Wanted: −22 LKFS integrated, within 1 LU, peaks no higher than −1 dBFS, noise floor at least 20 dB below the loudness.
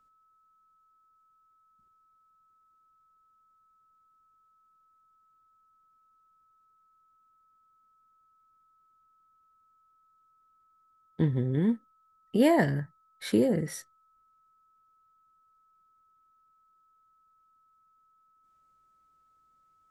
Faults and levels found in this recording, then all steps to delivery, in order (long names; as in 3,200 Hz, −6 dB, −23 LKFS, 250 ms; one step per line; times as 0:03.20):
interfering tone 1,300 Hz; level of the tone −64 dBFS; integrated loudness −28.0 LKFS; sample peak −12.5 dBFS; target loudness −22.0 LKFS
→ notch filter 1,300 Hz, Q 30
level +6 dB